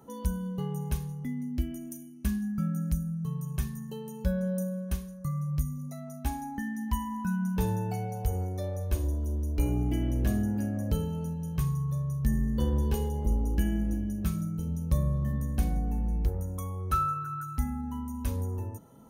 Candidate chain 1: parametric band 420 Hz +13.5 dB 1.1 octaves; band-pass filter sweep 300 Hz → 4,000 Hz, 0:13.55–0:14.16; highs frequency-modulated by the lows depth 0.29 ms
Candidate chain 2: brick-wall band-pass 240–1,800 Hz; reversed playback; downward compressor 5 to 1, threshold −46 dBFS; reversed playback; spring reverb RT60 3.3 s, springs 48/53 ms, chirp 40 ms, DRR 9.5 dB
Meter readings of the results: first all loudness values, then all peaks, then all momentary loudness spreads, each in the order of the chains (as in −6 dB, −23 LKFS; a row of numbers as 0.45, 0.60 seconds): −34.5, −49.0 LKFS; −17.0, −36.5 dBFS; 13, 4 LU